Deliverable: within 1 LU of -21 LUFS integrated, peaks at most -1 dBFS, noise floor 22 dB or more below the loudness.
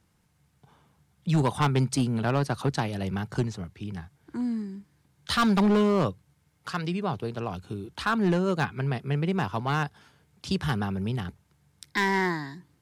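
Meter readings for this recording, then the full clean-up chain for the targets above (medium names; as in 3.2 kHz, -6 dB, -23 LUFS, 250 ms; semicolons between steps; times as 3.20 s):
clipped samples 1.2%; clipping level -17.5 dBFS; loudness -27.5 LUFS; peak level -17.5 dBFS; loudness target -21.0 LUFS
-> clip repair -17.5 dBFS; trim +6.5 dB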